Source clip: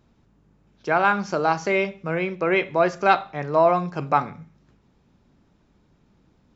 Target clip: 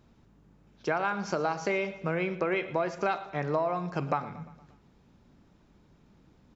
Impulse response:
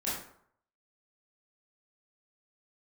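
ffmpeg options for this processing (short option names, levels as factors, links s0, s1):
-filter_complex "[0:a]acompressor=threshold=0.0562:ratio=10,asplit=2[s0][s1];[s1]aecho=0:1:116|232|348|464|580:0.15|0.0793|0.042|0.0223|0.0118[s2];[s0][s2]amix=inputs=2:normalize=0"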